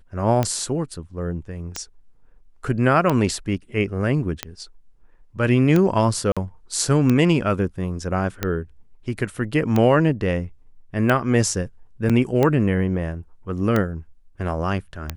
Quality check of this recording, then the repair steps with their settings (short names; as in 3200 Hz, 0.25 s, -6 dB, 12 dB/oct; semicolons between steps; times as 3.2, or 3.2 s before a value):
tick 45 rpm -8 dBFS
6.32–6.37 gap 46 ms
12.09–12.1 gap 6.7 ms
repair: de-click; interpolate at 6.32, 46 ms; interpolate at 12.09, 6.7 ms